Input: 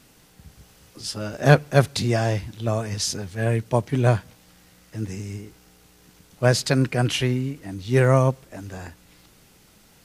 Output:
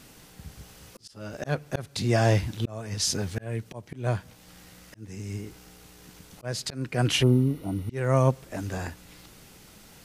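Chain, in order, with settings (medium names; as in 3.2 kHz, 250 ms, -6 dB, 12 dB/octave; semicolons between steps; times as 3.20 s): slow attack 646 ms; spectral replace 7.25–7.88 s, 1.5–8.7 kHz after; trim +3.5 dB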